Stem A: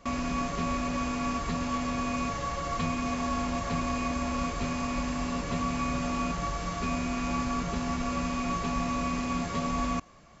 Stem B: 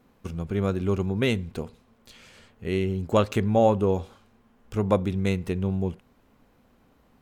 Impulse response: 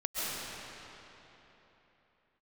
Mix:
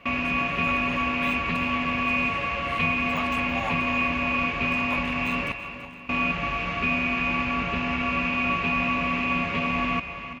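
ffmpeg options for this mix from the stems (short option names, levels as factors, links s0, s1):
-filter_complex "[0:a]lowpass=f=2600:t=q:w=6.6,volume=1.12,asplit=3[s0][s1][s2];[s0]atrim=end=5.52,asetpts=PTS-STARTPTS,afade=t=out:st=5.516:d=0.004:c=hsin[s3];[s1]atrim=start=5.52:end=6.09,asetpts=PTS-STARTPTS,volume=0[s4];[s2]atrim=start=6.09,asetpts=PTS-STARTPTS,afade=t=in:d=0.004:c=hsin[s5];[s3][s4][s5]concat=n=3:v=0:a=1,asplit=3[s6][s7][s8];[s7]volume=0.119[s9];[s8]volume=0.282[s10];[1:a]deesser=0.8,highpass=f=870:w=0.5412,highpass=f=870:w=1.3066,volume=0.631,asplit=2[s11][s12];[s12]volume=0.211[s13];[2:a]atrim=start_sample=2205[s14];[s9][s14]afir=irnorm=-1:irlink=0[s15];[s10][s13]amix=inputs=2:normalize=0,aecho=0:1:333|666|999|1332|1665|1998:1|0.43|0.185|0.0795|0.0342|0.0147[s16];[s6][s11][s15][s16]amix=inputs=4:normalize=0,highpass=60"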